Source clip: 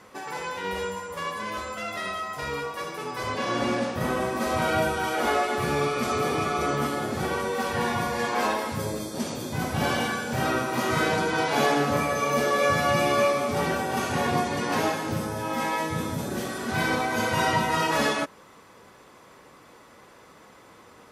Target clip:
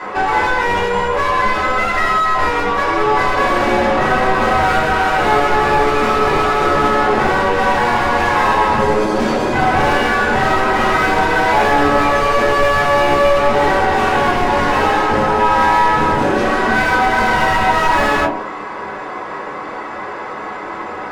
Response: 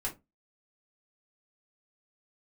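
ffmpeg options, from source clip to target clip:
-filter_complex "[0:a]lowpass=7.3k,bandreject=f=45.73:t=h:w=4,bandreject=f=91.46:t=h:w=4,bandreject=f=137.19:t=h:w=4,bandreject=f=182.92:t=h:w=4,bandreject=f=228.65:t=h:w=4,bandreject=f=274.38:t=h:w=4,bandreject=f=320.11:t=h:w=4,bandreject=f=365.84:t=h:w=4,bandreject=f=411.57:t=h:w=4,bandreject=f=457.3:t=h:w=4,bandreject=f=503.03:t=h:w=4,bandreject=f=548.76:t=h:w=4,bandreject=f=594.49:t=h:w=4,bandreject=f=640.22:t=h:w=4,bandreject=f=685.95:t=h:w=4,bandreject=f=731.68:t=h:w=4,bandreject=f=777.41:t=h:w=4,bandreject=f=823.14:t=h:w=4,bandreject=f=868.87:t=h:w=4,bandreject=f=914.6:t=h:w=4,bandreject=f=960.33:t=h:w=4,bandreject=f=1.00606k:t=h:w=4,asplit=2[a][b];[b]adynamicsmooth=sensitivity=5.5:basefreq=2.9k,volume=-1dB[c];[a][c]amix=inputs=2:normalize=0,asplit=2[d][e];[e]highpass=f=720:p=1,volume=34dB,asoftclip=type=tanh:threshold=-4.5dB[f];[d][f]amix=inputs=2:normalize=0,lowpass=f=1.8k:p=1,volume=-6dB[g];[1:a]atrim=start_sample=2205[h];[g][h]afir=irnorm=-1:irlink=0,volume=-5dB"

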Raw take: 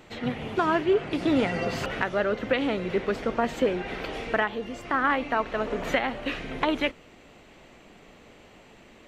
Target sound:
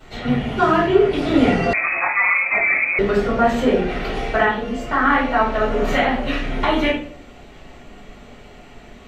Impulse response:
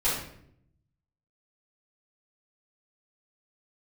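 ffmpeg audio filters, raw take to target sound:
-filter_complex "[1:a]atrim=start_sample=2205,asetrate=66150,aresample=44100[a];[0:a][a]afir=irnorm=-1:irlink=0,asettb=1/sr,asplit=3[b][c][d];[b]atrim=end=1.734[e];[c]atrim=start=1.73:end=2.99,asetpts=PTS-STARTPTS,afade=t=in:d=0.004:c=qsin,afade=t=out:st=1.256:d=0.004:c=qsin,lowpass=f=2.2k:t=q:w=0.5098,lowpass=f=2.2k:t=q:w=0.6013,lowpass=f=2.2k:t=q:w=0.9,lowpass=f=2.2k:t=q:w=2.563,afreqshift=-2600[f];[d]atrim=start=2.986[g];[e][f]acrossfade=d=0.004:c1=hsin:c2=qsin[h];[h][g]acrossfade=d=0.004:c1=qsin:c2=hsin"

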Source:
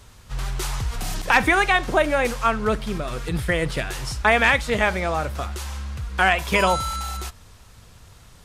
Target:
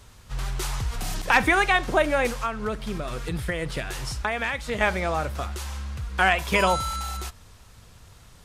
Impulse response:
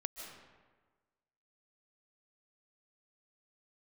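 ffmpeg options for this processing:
-filter_complex "[0:a]asettb=1/sr,asplit=3[a][b][c];[a]atrim=end=2.284[d];[b]atrim=start=2.28:end=4.81,asetpts=PTS-STARTPTS,afade=t=in:d=0.004:c=qsin,afade=t=out:st=2.526:d=0.004:c=qsin,acompressor=threshold=-23dB:ratio=4[e];[c]atrim=start=4.806[f];[d][e]acrossfade=d=0.004:c1=hsin:c2=qsin[g];[g][f]acrossfade=d=0.004:c1=qsin:c2=hsin,volume=-2dB"

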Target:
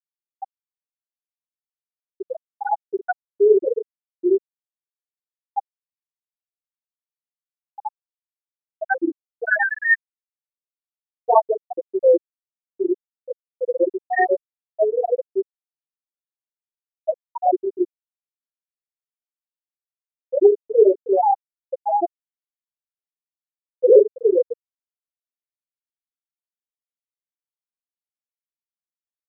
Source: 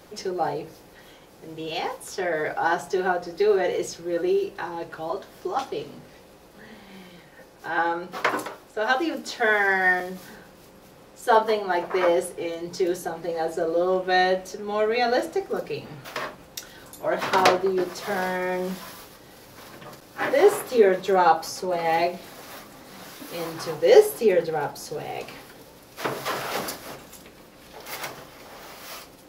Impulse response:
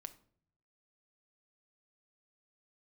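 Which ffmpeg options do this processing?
-filter_complex "[0:a]adynamicequalizer=threshold=0.0158:dfrequency=920:dqfactor=3.1:tfrequency=920:tqfactor=3.1:attack=5:release=100:ratio=0.375:range=2:mode=cutabove:tftype=bell,flanger=delay=17.5:depth=5.1:speed=0.76,dynaudnorm=f=110:g=13:m=4.5dB,asplit=6[a][b][c][d][e][f];[b]adelay=249,afreqshift=33,volume=-12dB[g];[c]adelay=498,afreqshift=66,volume=-18.2dB[h];[d]adelay=747,afreqshift=99,volume=-24.4dB[i];[e]adelay=996,afreqshift=132,volume=-30.6dB[j];[f]adelay=1245,afreqshift=165,volume=-36.8dB[k];[a][g][h][i][j][k]amix=inputs=6:normalize=0,asplit=2[l][m];[1:a]atrim=start_sample=2205[n];[m][n]afir=irnorm=-1:irlink=0,volume=11.5dB[o];[l][o]amix=inputs=2:normalize=0,afftfilt=real='re*gte(hypot(re,im),2.51)':imag='im*gte(hypot(re,im),2.51)':win_size=1024:overlap=0.75,volume=-5dB"

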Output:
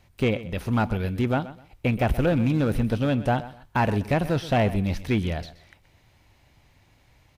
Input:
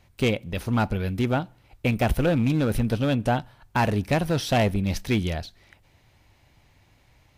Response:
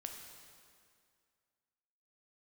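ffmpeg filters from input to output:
-filter_complex "[0:a]acrossover=split=3000[a][b];[b]acompressor=threshold=-43dB:ratio=4:attack=1:release=60[c];[a][c]amix=inputs=2:normalize=0,aecho=1:1:126|252:0.158|0.038"

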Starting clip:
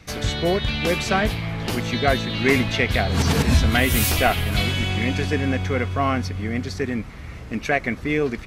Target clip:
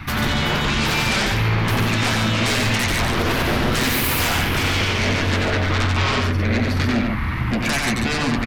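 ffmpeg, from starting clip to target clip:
-filter_complex "[0:a]firequalizer=gain_entry='entry(300,0);entry(450,-19);entry(930,5);entry(6900,-18);entry(12000,-2)':delay=0.05:min_phase=1,acompressor=threshold=-31dB:ratio=2,aeval=exprs='0.188*sin(PI/2*5.62*val(0)/0.188)':c=same,flanger=delay=8.3:depth=1.1:regen=-48:speed=0.25:shape=sinusoidal,asplit=2[a][b];[b]aecho=0:1:90.38|142.9:0.631|0.501[c];[a][c]amix=inputs=2:normalize=0"

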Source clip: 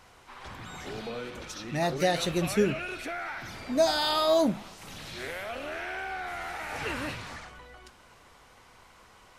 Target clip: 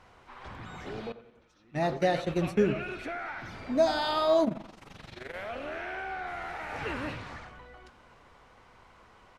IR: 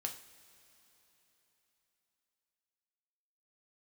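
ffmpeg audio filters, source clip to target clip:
-filter_complex "[0:a]aemphasis=mode=reproduction:type=75kf,asettb=1/sr,asplit=3[a][b][c];[a]atrim=end=1.124[d];[b]atrim=start=1.12:end=2.65,asetpts=PTS-STARTPTS,afade=t=in:d=0.004:c=qsin,afade=t=out:st=1.526:d=0.004:c=qsin,agate=range=-21dB:threshold=-31dB:ratio=16:detection=peak[e];[c]atrim=start=2.646[f];[d][e]acrossfade=d=0.004:c1=hsin:c2=qsin[g];[g][f]acrossfade=d=0.004:c1=qsin:c2=hsin,asplit=2[h][i];[i]adelay=91,lowpass=f=2.2k:p=1,volume=-14dB,asplit=2[j][k];[k]adelay=91,lowpass=f=2.2k:p=1,volume=0.46,asplit=2[l][m];[m]adelay=91,lowpass=f=2.2k:p=1,volume=0.46,asplit=2[n][o];[o]adelay=91,lowpass=f=2.2k:p=1,volume=0.46[p];[h][j][l][n][p]amix=inputs=5:normalize=0,asplit=3[q][r][s];[q]afade=t=out:st=4.44:d=0.02[t];[r]tremolo=f=23:d=0.824,afade=t=in:st=4.44:d=0.02,afade=t=out:st=5.33:d=0.02[u];[s]afade=t=in:st=5.33:d=0.02[v];[t][u][v]amix=inputs=3:normalize=0"

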